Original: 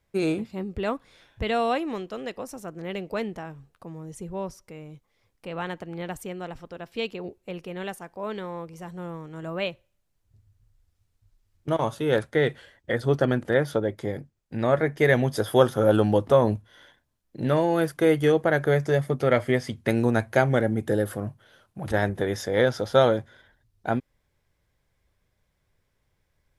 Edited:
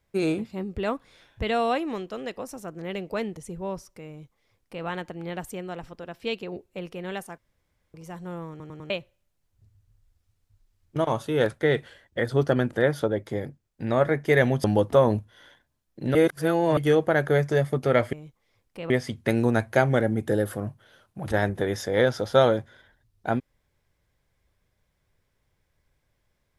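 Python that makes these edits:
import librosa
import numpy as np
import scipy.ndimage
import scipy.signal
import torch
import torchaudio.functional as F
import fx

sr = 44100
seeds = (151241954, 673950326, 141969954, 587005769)

y = fx.edit(x, sr, fx.cut(start_s=3.37, length_s=0.72),
    fx.duplicate(start_s=4.81, length_s=0.77, to_s=19.5),
    fx.room_tone_fill(start_s=8.1, length_s=0.56),
    fx.stutter_over(start_s=9.22, slice_s=0.1, count=4),
    fx.cut(start_s=15.36, length_s=0.65),
    fx.reverse_span(start_s=17.52, length_s=0.62), tone=tone)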